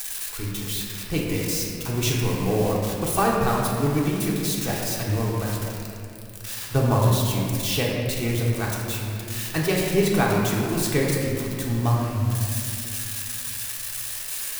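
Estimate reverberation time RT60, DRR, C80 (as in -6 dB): 2.6 s, -4.0 dB, 1.0 dB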